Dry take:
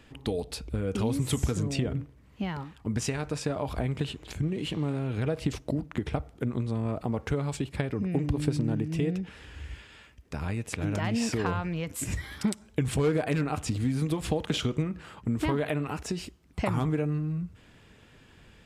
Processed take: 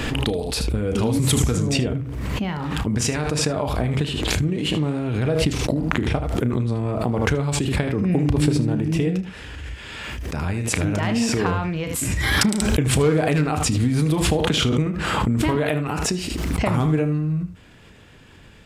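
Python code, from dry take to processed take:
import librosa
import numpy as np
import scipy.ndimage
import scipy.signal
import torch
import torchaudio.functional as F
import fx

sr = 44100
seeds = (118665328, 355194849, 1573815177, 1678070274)

y = fx.room_early_taps(x, sr, ms=(33, 77), db=(-11.5, -12.0))
y = fx.pre_swell(y, sr, db_per_s=23.0)
y = F.gain(torch.from_numpy(y), 6.0).numpy()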